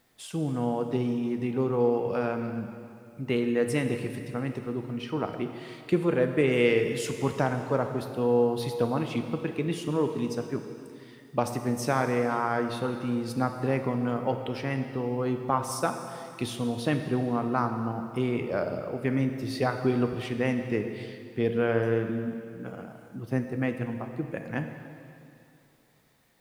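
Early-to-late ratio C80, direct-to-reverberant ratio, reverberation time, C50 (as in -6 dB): 8.0 dB, 6.0 dB, 2.5 s, 7.0 dB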